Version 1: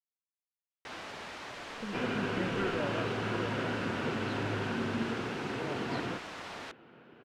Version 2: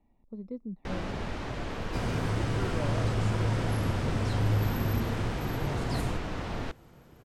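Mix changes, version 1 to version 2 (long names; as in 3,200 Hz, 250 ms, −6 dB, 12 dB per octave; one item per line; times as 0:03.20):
speech: entry −1.50 s
first sound: remove high-pass filter 1,200 Hz 6 dB per octave
second sound: remove loudspeaker in its box 220–3,700 Hz, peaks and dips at 240 Hz +4 dB, 390 Hz +4 dB, 1,500 Hz +7 dB, 2,700 Hz +7 dB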